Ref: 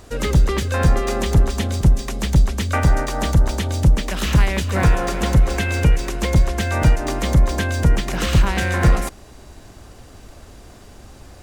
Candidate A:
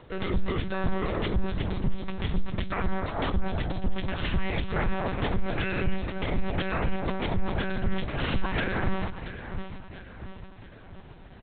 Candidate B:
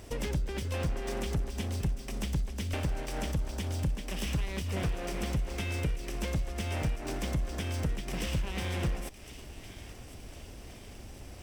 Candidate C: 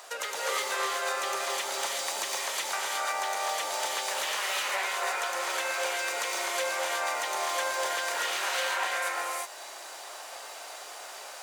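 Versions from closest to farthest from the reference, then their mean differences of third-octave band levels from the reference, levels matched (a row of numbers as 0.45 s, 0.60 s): B, A, C; 4.5 dB, 11.0 dB, 15.0 dB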